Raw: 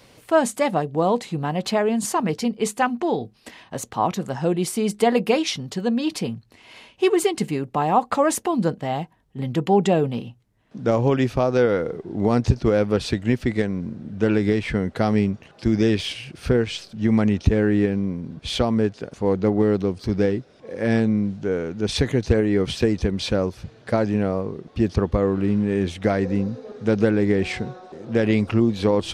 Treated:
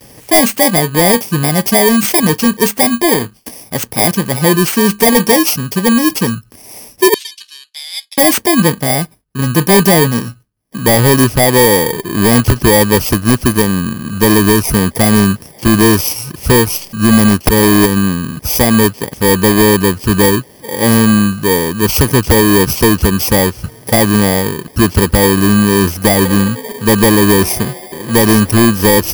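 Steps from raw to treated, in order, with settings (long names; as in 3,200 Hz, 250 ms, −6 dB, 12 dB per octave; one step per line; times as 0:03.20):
samples in bit-reversed order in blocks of 32 samples
noise gate with hold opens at −46 dBFS
0:07.14–0:08.18: four-pole ladder band-pass 4,100 Hz, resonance 50%
0:17.29–0:18.04: transient designer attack +10 dB, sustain −6 dB
sine wavefolder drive 17 dB, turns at 5.5 dBFS
level −8 dB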